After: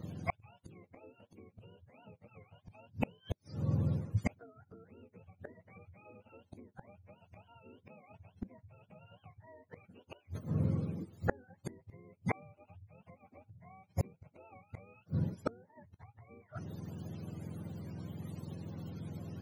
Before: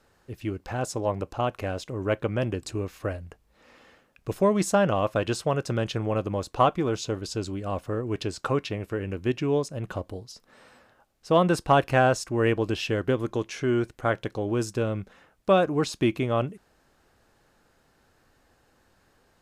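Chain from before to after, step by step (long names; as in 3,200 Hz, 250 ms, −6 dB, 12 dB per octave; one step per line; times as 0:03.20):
frequency axis turned over on the octave scale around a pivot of 520 Hz
low-shelf EQ 420 Hz +11.5 dB
downward compressor 20 to 1, threshold −25 dBFS, peak gain reduction 19 dB
gate with flip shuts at −30 dBFS, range −38 dB
level +11 dB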